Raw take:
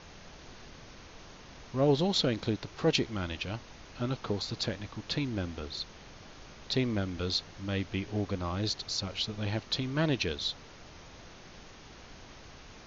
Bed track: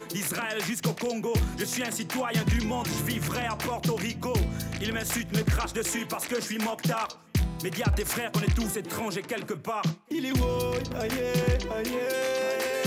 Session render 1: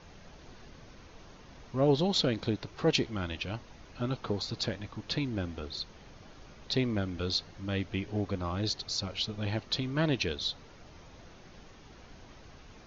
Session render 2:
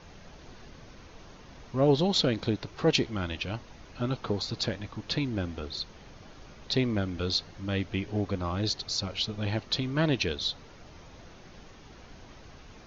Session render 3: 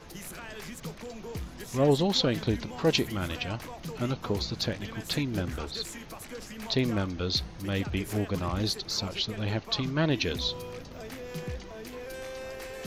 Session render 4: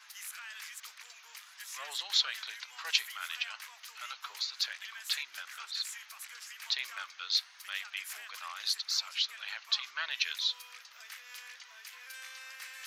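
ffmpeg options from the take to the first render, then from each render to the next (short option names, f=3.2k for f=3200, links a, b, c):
-af "afftdn=nr=6:nf=-51"
-af "volume=2.5dB"
-filter_complex "[1:a]volume=-12dB[a];[0:a][a]amix=inputs=2:normalize=0"
-af "highpass=f=1.3k:w=0.5412,highpass=f=1.3k:w=1.3066"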